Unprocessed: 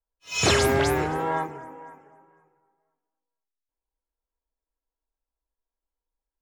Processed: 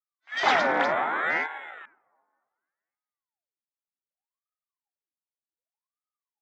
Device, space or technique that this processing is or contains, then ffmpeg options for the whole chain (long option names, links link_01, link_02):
voice changer toy: -af "aeval=exprs='val(0)*sin(2*PI*680*n/s+680*0.85/0.66*sin(2*PI*0.66*n/s))':channel_layout=same,highpass=440,equalizer=frequency=450:width_type=q:width=4:gain=-5,equalizer=frequency=810:width_type=q:width=4:gain=5,equalizer=frequency=1400:width_type=q:width=4:gain=4,equalizer=frequency=2000:width_type=q:width=4:gain=4,equalizer=frequency=2800:width_type=q:width=4:gain=-8,equalizer=frequency=4400:width_type=q:width=4:gain=-6,lowpass=frequency=4500:width=0.5412,lowpass=frequency=4500:width=1.3066,afwtdn=0.00708,volume=2.5dB"